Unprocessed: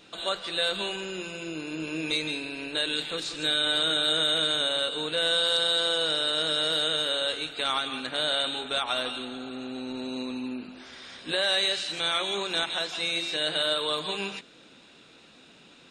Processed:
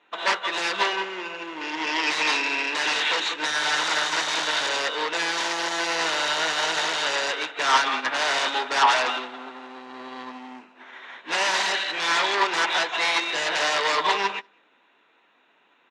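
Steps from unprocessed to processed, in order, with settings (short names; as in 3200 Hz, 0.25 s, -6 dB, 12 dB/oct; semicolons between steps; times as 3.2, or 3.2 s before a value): Wiener smoothing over 9 samples; 1.61–3.34 high shelf 2200 Hz +10 dB; sine folder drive 18 dB, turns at -12.5 dBFS; modulation noise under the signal 25 dB; soft clip -13 dBFS, distortion -22 dB; speaker cabinet 480–6300 Hz, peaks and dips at 530 Hz -4 dB, 960 Hz +8 dB, 1900 Hz +6 dB; outdoor echo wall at 33 m, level -15 dB; upward expander 2.5:1, over -32 dBFS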